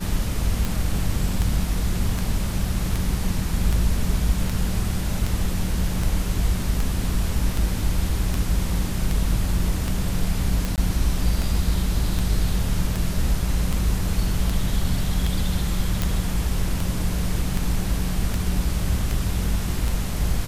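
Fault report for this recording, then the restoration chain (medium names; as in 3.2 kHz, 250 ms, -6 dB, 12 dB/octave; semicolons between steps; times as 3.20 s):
tick 78 rpm
10.76–10.78 s: dropout 18 ms
16.02 s: pop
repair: de-click; interpolate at 10.76 s, 18 ms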